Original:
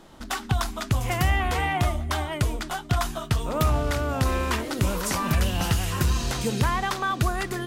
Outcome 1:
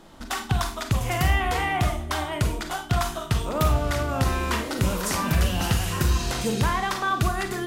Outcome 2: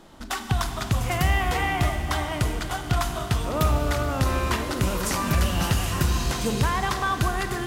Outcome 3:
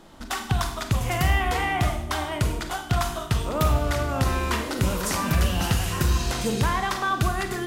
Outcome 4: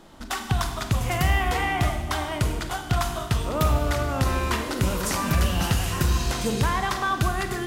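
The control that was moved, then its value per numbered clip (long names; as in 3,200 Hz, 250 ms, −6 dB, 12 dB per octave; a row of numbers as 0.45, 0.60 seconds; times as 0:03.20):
four-comb reverb, RT60: 0.32, 4.3, 0.69, 1.4 seconds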